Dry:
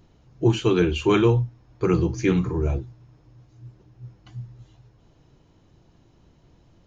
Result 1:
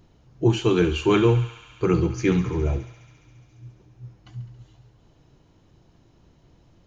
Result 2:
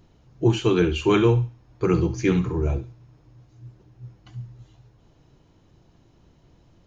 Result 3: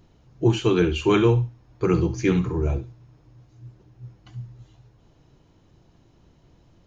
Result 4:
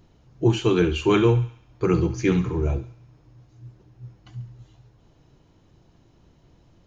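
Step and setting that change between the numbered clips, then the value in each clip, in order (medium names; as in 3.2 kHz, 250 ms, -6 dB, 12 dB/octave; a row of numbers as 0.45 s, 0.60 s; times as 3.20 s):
thinning echo, feedback: 86%, 32%, 22%, 58%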